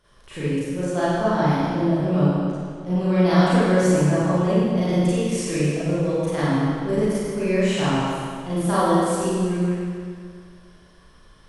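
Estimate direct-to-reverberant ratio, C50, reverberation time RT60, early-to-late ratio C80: −12.0 dB, −4.5 dB, 2.1 s, −3.0 dB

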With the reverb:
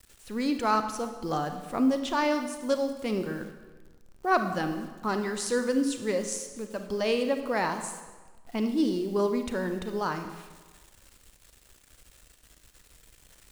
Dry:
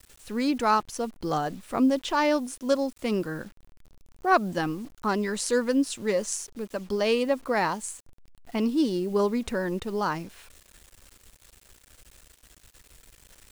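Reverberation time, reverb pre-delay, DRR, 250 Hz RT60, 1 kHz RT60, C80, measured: 1.3 s, 29 ms, 7.0 dB, 1.3 s, 1.3 s, 10.0 dB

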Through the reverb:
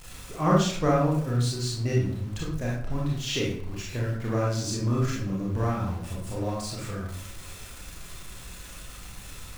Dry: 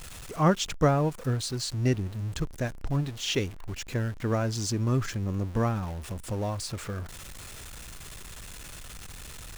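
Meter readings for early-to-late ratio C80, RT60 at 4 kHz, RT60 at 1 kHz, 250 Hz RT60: 6.5 dB, 0.40 s, 0.60 s, 0.75 s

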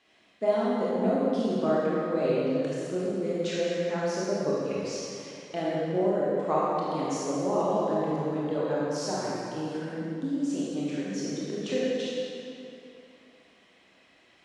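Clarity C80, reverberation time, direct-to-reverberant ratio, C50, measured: −2.0 dB, 2.8 s, −7.5 dB, −4.0 dB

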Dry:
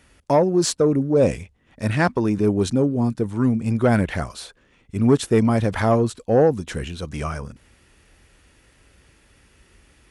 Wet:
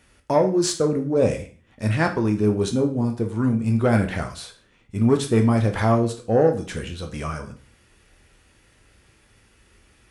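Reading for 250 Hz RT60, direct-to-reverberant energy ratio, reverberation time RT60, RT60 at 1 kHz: 0.45 s, 4.0 dB, 0.40 s, 0.40 s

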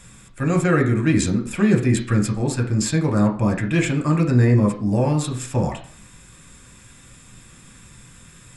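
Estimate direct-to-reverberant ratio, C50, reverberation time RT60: 2.0 dB, 10.5 dB, 0.45 s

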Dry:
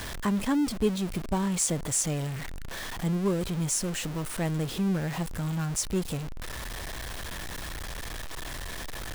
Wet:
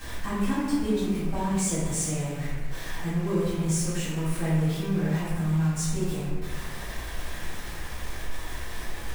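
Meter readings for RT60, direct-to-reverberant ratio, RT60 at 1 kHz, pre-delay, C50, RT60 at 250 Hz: 1.4 s, −12.5 dB, 1.3 s, 4 ms, −1.5 dB, 1.7 s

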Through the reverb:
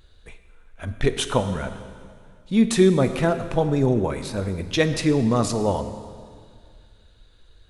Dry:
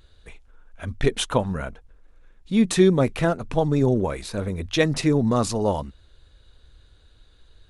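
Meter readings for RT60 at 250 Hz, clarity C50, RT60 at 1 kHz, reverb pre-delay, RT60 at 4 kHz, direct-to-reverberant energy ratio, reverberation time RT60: 2.2 s, 10.5 dB, 2.0 s, 4 ms, 1.9 s, 9.0 dB, 2.1 s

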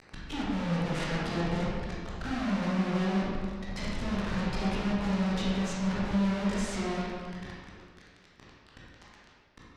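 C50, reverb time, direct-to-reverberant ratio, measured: −3.0 dB, 1.9 s, −7.5 dB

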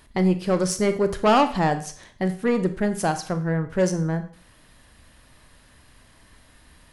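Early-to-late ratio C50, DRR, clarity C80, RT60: 13.0 dB, 9.0 dB, 16.5 dB, 0.50 s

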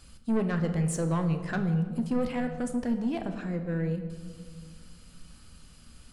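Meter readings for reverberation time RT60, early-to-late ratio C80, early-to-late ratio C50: 1.8 s, 10.5 dB, 9.0 dB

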